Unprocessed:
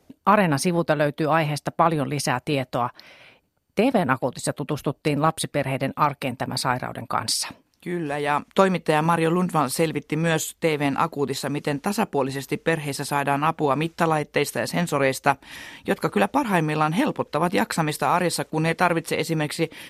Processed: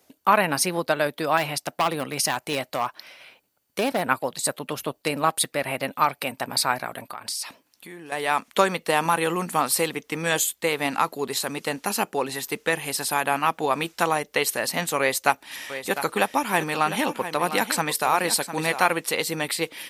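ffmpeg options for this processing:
-filter_complex "[0:a]asettb=1/sr,asplit=3[a][b][c];[a]atrim=end=1.374[d];[b]atrim=start=1.37:end=4.04,asetpts=PTS-STARTPTS,afade=t=in:d=0.004:c=qsin,afade=t=out:st=2.666:d=0.004:c=qsin,asoftclip=type=hard:threshold=-15.5dB[e];[c]atrim=start=4.036[f];[d][e]acrossfade=d=0.004:c1=hsin:c2=qsin[g];[g][f]acrossfade=d=0.004:c1=qsin:c2=hsin,asettb=1/sr,asplit=3[h][i][j];[h]atrim=end=7.064[k];[i]atrim=start=7.06:end=8.12,asetpts=PTS-STARTPTS,afade=t=in:d=0.004:c=qsin,afade=t=out:st=1.056:d=0.004:c=qsin,acompressor=threshold=-35dB:ratio=3:attack=3.2:release=140:knee=1:detection=peak[l];[j]atrim=start=8.116[m];[k][l]acrossfade=d=0.004:c1=hsin:c2=qsin[n];[n][m]acrossfade=d=0.004:c1=qsin:c2=hsin,asettb=1/sr,asplit=3[o][p][q];[o]atrim=end=14.994[r];[p]atrim=start=14.99:end=18.88,asetpts=PTS-STARTPTS,afade=t=in:d=0.004:c=qsin,afade=t=out:st=3.886:d=0.004:c=qsin,aecho=1:1:703:0.282,atrim=end_sample=171549[s];[q]atrim=start=18.876[t];[r][s]acrossfade=d=0.004:c1=hsin:c2=qsin[u];[u][t]acrossfade=d=0.004:c1=qsin:c2=hsin,lowpass=f=3.6k:p=1,aemphasis=mode=production:type=riaa"

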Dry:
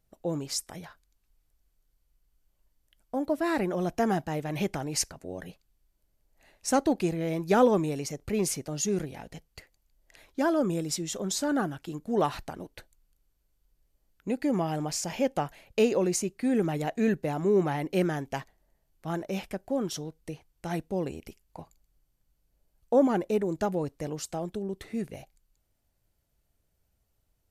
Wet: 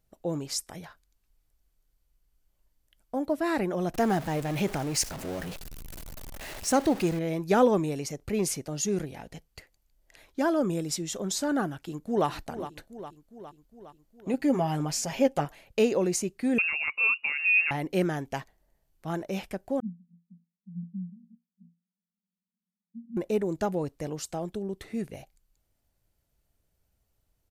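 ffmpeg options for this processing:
-filter_complex "[0:a]asettb=1/sr,asplit=3[a][b][c];[a]atrim=end=3.944[d];[b]atrim=start=3.94:end=7.19,asetpts=PTS-STARTPTS,afade=t=in:d=0.004:c=qsin,afade=t=out:st=3.246:d=0.004:c=qsin,aeval=exprs='val(0)+0.5*0.0188*sgn(val(0))':c=same[e];[c]atrim=start=7.186[f];[d][e]acrossfade=d=0.004:c1=hsin:c2=qsin[g];[g][f]acrossfade=d=0.004:c1=qsin:c2=hsin,asplit=2[h][i];[i]afade=t=in:st=11.75:d=0.01,afade=t=out:st=12.28:d=0.01,aecho=0:1:410|820|1230|1640|2050|2460|2870|3280:0.251189|0.163273|0.106127|0.0689827|0.0448387|0.0291452|0.0189444|0.0123138[j];[h][j]amix=inputs=2:normalize=0,asettb=1/sr,asplit=3[k][l][m];[k]atrim=end=14.334[n];[l]atrim=start=14.33:end=15.45,asetpts=PTS-STARTPTS,afade=t=in:d=0.004:c=qsin,afade=t=out:st=1.116:d=0.004:c=qsin,aecho=1:1:7.4:0.65,atrim=end_sample=49392[o];[m]atrim=start=15.446[p];[n][o]acrossfade=d=0.004:c1=hsin:c2=qsin[q];[q][p]acrossfade=d=0.004:c1=qsin:c2=hsin,asettb=1/sr,asplit=3[r][s][t];[r]atrim=end=16.584[u];[s]atrim=start=16.58:end=17.71,asetpts=PTS-STARTPTS,afade=t=in:d=0.004:c=qsin,afade=t=out:st=1.126:d=0.004:c=qsin,lowpass=f=2.5k:t=q:w=0.5098,lowpass=f=2.5k:t=q:w=0.6013,lowpass=f=2.5k:t=q:w=0.9,lowpass=f=2.5k:t=q:w=2.563,afreqshift=-2900[v];[t]atrim=start=17.706[w];[u][v]acrossfade=d=0.004:c1=hsin:c2=qsin[x];[x][w]acrossfade=d=0.004:c1=qsin:c2=hsin,asettb=1/sr,asplit=3[y][z][aa];[y]atrim=end=19.804[ab];[z]atrim=start=19.8:end=23.17,asetpts=PTS-STARTPTS,afade=t=in:d=0.004:c=qsin,afade=t=out:st=3.366:d=0.004:c=qsin,asuperpass=centerf=200:order=20:qfactor=3.1[ac];[aa]atrim=start=23.166[ad];[ab][ac]acrossfade=d=0.004:c1=hsin:c2=qsin[ae];[ae][ad]acrossfade=d=0.004:c1=qsin:c2=hsin"

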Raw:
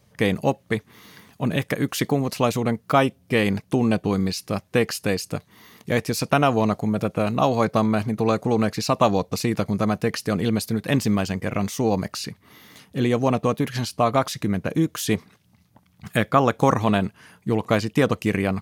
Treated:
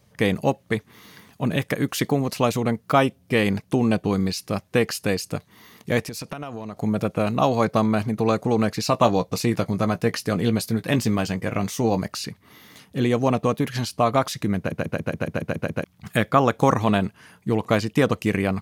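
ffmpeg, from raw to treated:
-filter_complex "[0:a]asettb=1/sr,asplit=3[a][b][c];[a]atrim=end=6.034[d];[b]atrim=start=6.03:end=6.77,asetpts=PTS-STARTPTS,afade=t=in:d=0.004:c=qsin,afade=t=out:st=0.736:d=0.004:c=qsin,acompressor=threshold=-29dB:ratio=8:attack=3.2:release=140:knee=1:detection=peak[e];[c]atrim=start=6.766[f];[d][e]acrossfade=d=0.004:c1=hsin:c2=qsin[g];[g][f]acrossfade=d=0.004:c1=qsin:c2=hsin,asettb=1/sr,asplit=3[h][i][j];[h]atrim=end=8.834[k];[i]atrim=start=8.83:end=12.01,asetpts=PTS-STARTPTS,afade=t=in:d=0.004:c=qsin,afade=t=out:st=3.176:d=0.004:c=qsin,asplit=2[l][m];[m]adelay=17,volume=-11dB[n];[l][n]amix=inputs=2:normalize=0,atrim=end_sample=140238[o];[j]atrim=start=12.006[p];[k][o]acrossfade=d=0.004:c1=hsin:c2=qsin[q];[q][p]acrossfade=d=0.004:c1=qsin:c2=hsin,asplit=10[r][s][t][u][v][w][x][y][z][aa];[r]atrim=end=14.722[ab];[s]atrim=start=14.578:end=14.722[ac];[t]atrim=start=14.578:end=14.722[ad];[u]atrim=start=14.578:end=14.722[ae];[v]atrim=start=14.578:end=14.722[af];[w]atrim=start=14.578:end=14.722[ag];[x]atrim=start=14.578:end=14.722[ah];[y]atrim=start=14.578:end=14.722[ai];[z]atrim=start=14.578:end=14.722[aj];[aa]atrim=start=15.838[ak];[ab][ac]acrossfade=d=0.004:c1=hsin:c2=hsin[al];[al][ad]acrossfade=d=0.004:c1=hsin:c2=hsin[am];[am][ae]acrossfade=d=0.004:c1=hsin:c2=hsin[an];[an][af]acrossfade=d=0.004:c1=hsin:c2=hsin[ao];[ao][ag]acrossfade=d=0.004:c1=hsin:c2=hsin[ap];[ap][ah]acrossfade=d=0.004:c1=hsin:c2=hsin[aq];[aq][ai]acrossfade=d=0.004:c1=hsin:c2=hsin[ar];[ar][aj]acrossfade=d=0.004:c1=hsin:c2=hsin[as];[as][ak]acrossfade=d=0.004:c1=hsin:c2=hsin"

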